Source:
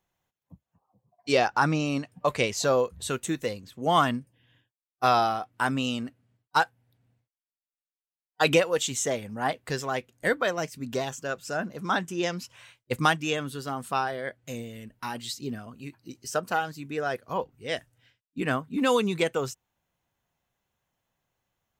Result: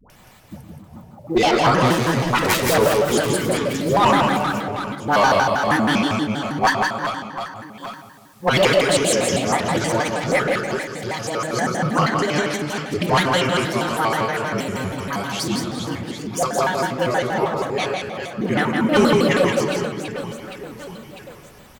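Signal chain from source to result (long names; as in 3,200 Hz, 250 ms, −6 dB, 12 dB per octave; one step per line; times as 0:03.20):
0:01.73–0:02.66: phase distortion by the signal itself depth 0.85 ms
in parallel at −1 dB: upward compression, threshold −25 dBFS
0:10.39–0:11.04: on the sum: guitar amp tone stack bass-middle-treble 5-5-5
all-pass dispersion highs, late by 104 ms, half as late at 620 Hz
on a send at −3.5 dB: high-shelf EQ 9,100 Hz −11.5 dB + convolution reverb RT60 1.7 s, pre-delay 5 ms
on the sum: floating-point word with a short mantissa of 6 bits
asymmetric clip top −13 dBFS
reverse bouncing-ball delay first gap 170 ms, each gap 1.4×, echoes 5
pitch modulation by a square or saw wave square 6.3 Hz, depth 250 cents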